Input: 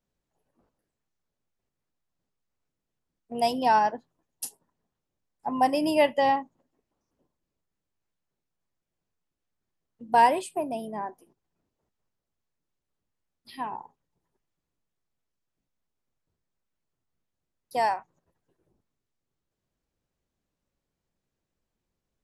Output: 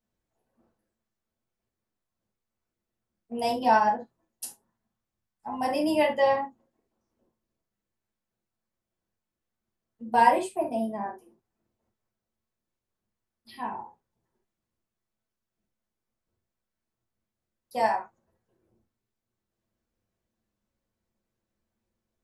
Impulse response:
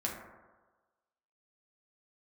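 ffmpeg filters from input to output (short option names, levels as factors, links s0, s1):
-filter_complex "[0:a]asettb=1/sr,asplit=3[s0][s1][s2];[s0]atrim=end=4.454[s3];[s1]atrim=start=4.45:end=5.65,asetpts=PTS-STARTPTS,afade=t=in:d=0.004:c=qsin,afade=t=out:st=1.196:d=0.004:c=qsin,equalizer=f=450:t=o:w=1.3:g=-7[s4];[s2]atrim=start=5.646[s5];[s3][s4]acrossfade=d=0.004:c1=hsin:c2=qsin[s6];[s6][s5]acrossfade=d=0.004:c1=qsin:c2=hsin[s7];[1:a]atrim=start_sample=2205,atrim=end_sample=3528[s8];[s7][s8]afir=irnorm=-1:irlink=0,volume=0.75"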